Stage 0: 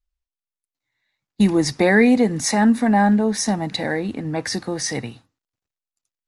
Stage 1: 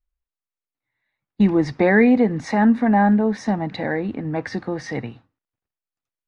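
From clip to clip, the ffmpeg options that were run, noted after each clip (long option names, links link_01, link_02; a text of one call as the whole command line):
ffmpeg -i in.wav -af "lowpass=2300" out.wav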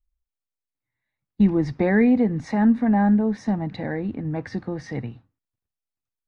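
ffmpeg -i in.wav -af "lowshelf=frequency=230:gain=11.5,volume=-7.5dB" out.wav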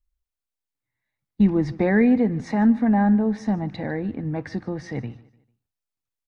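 ffmpeg -i in.wav -af "aecho=1:1:149|298|447:0.0891|0.0339|0.0129" out.wav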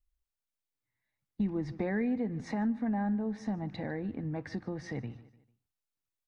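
ffmpeg -i in.wav -af "acompressor=threshold=-33dB:ratio=2,volume=-3.5dB" out.wav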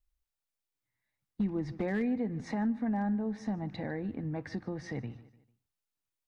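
ffmpeg -i in.wav -af "asoftclip=type=hard:threshold=-24dB" out.wav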